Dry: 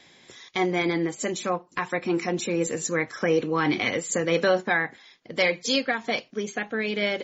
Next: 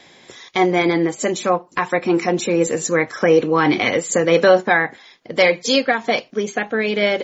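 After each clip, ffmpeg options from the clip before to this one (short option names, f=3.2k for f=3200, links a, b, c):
-af "equalizer=f=650:w=0.67:g=4.5,volume=5.5dB"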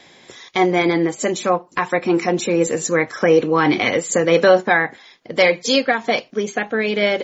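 -af anull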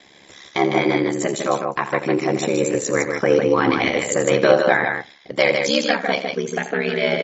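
-filter_complex "[0:a]aeval=exprs='val(0)*sin(2*PI*35*n/s)':c=same,asplit=2[a][b];[b]aecho=0:1:84.55|154.5:0.251|0.562[c];[a][c]amix=inputs=2:normalize=0"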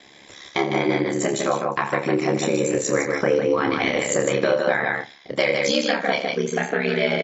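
-filter_complex "[0:a]acompressor=threshold=-17dB:ratio=6,asplit=2[a][b];[b]adelay=29,volume=-6.5dB[c];[a][c]amix=inputs=2:normalize=0"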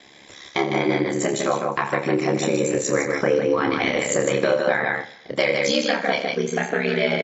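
-af "aecho=1:1:126|252|378:0.0944|0.0425|0.0191"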